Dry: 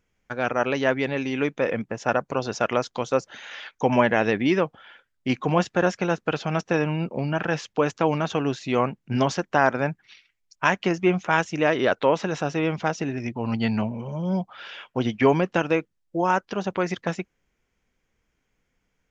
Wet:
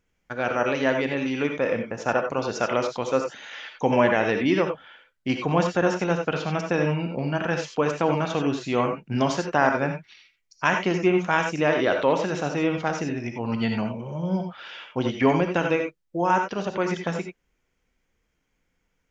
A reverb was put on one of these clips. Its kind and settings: gated-style reverb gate 110 ms rising, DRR 4 dB; trim -1.5 dB

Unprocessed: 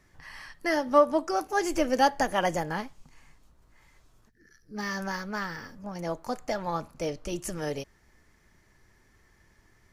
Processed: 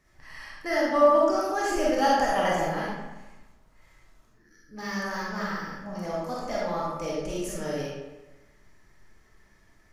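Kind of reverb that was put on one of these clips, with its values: algorithmic reverb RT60 1.1 s, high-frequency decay 0.7×, pre-delay 5 ms, DRR -6 dB; trim -5 dB

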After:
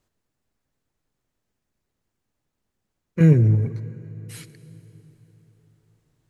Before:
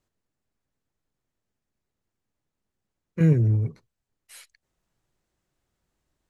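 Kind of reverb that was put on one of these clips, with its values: plate-style reverb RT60 4.1 s, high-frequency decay 0.75×, DRR 14.5 dB; trim +4.5 dB

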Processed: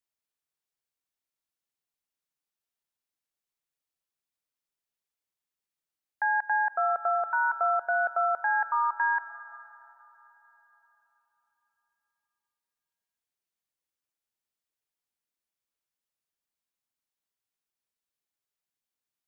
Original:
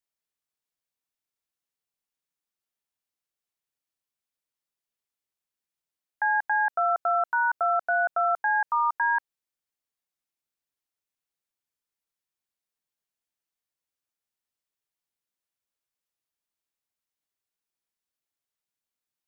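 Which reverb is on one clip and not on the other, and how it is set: algorithmic reverb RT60 4.1 s, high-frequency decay 0.9×, pre-delay 75 ms, DRR 14 dB; trim -2 dB

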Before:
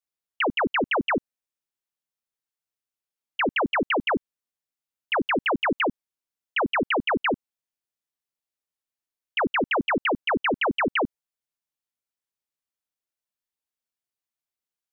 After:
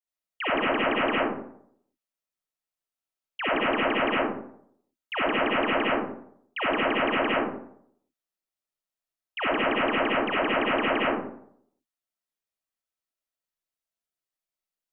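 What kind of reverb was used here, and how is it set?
algorithmic reverb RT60 0.67 s, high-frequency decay 0.45×, pre-delay 25 ms, DRR -8 dB; trim -9 dB

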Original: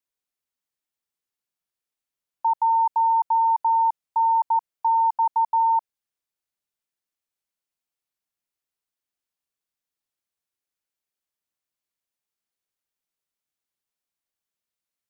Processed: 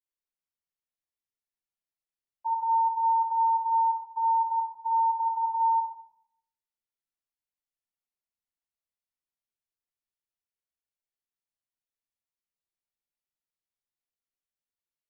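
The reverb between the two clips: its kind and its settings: simulated room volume 170 m³, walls mixed, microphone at 4.7 m; trim -23.5 dB

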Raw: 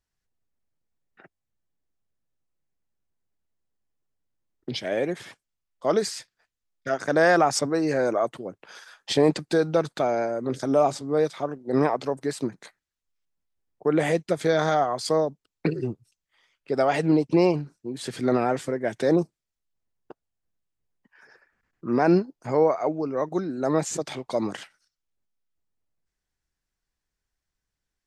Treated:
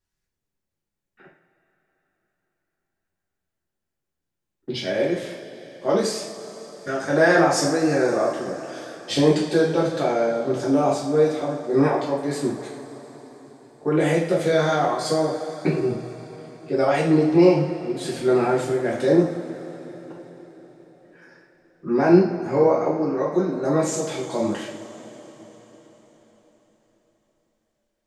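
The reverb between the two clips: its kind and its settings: two-slope reverb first 0.49 s, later 4.8 s, from -18 dB, DRR -6 dB; trim -4 dB

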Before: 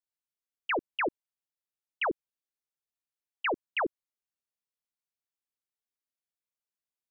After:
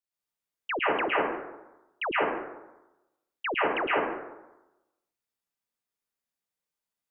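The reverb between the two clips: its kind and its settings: plate-style reverb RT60 1 s, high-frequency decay 0.5×, pre-delay 100 ms, DRR -6.5 dB; trim -2 dB

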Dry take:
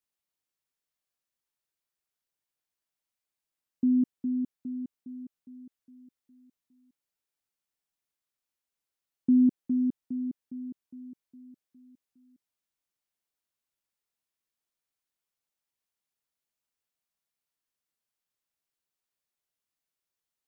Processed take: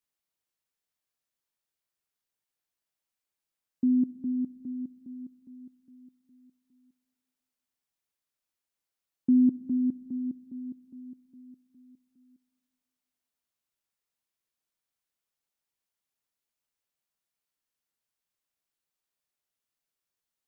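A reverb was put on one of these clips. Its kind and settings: algorithmic reverb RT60 1.5 s, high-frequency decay 0.25×, pre-delay 10 ms, DRR 17.5 dB

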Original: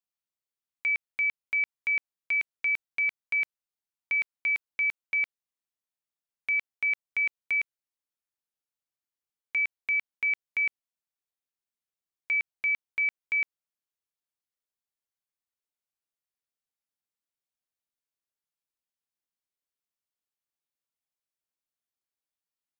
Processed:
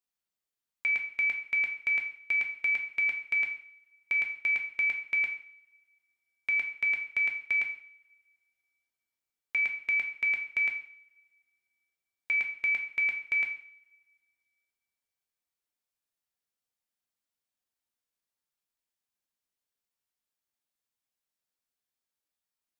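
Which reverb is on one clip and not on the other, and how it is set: two-slope reverb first 0.54 s, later 2 s, from -27 dB, DRR 3 dB

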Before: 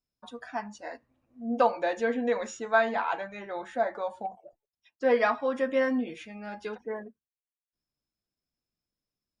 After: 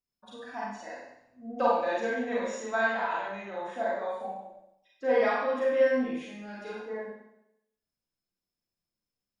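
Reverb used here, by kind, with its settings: Schroeder reverb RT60 0.8 s, combs from 32 ms, DRR -5.5 dB; trim -7.5 dB

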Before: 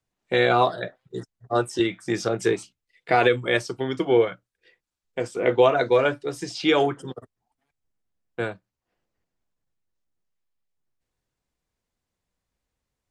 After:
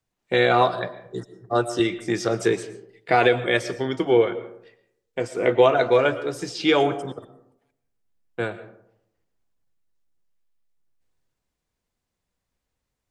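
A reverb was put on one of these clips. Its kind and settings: algorithmic reverb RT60 0.76 s, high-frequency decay 0.4×, pre-delay 75 ms, DRR 13.5 dB; trim +1 dB

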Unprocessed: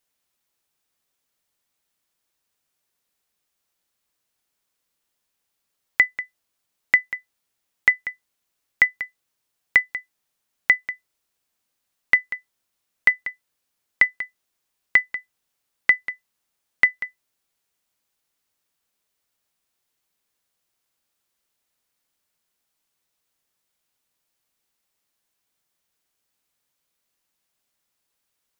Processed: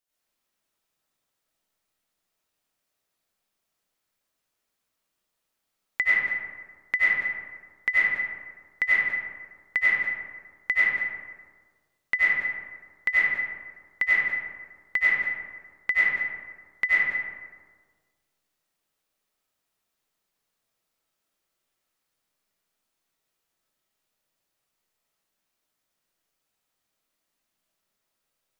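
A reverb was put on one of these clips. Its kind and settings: algorithmic reverb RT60 1.6 s, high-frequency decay 0.4×, pre-delay 55 ms, DRR -9.5 dB; trim -10 dB

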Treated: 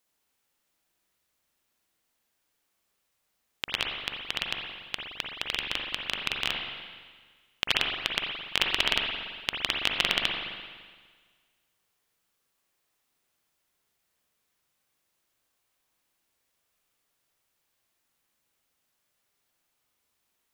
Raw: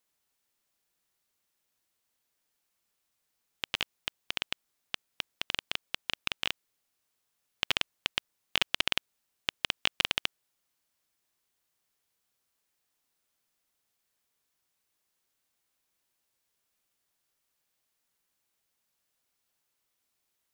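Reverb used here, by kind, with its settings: spring tank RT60 1.6 s, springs 42/57 ms, chirp 50 ms, DRR 0 dB; trim +2 dB

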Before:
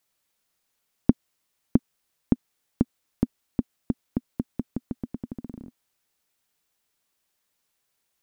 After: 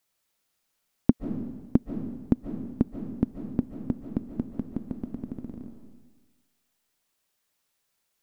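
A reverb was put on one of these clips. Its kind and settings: algorithmic reverb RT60 1.3 s, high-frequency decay 0.95×, pre-delay 105 ms, DRR 6 dB; trim -1 dB

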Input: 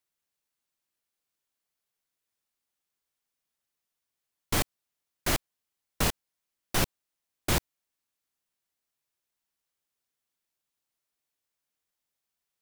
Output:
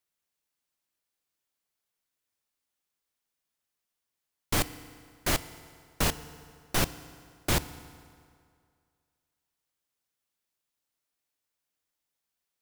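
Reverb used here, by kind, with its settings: FDN reverb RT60 2.2 s, low-frequency decay 0.9×, high-frequency decay 0.75×, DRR 14 dB

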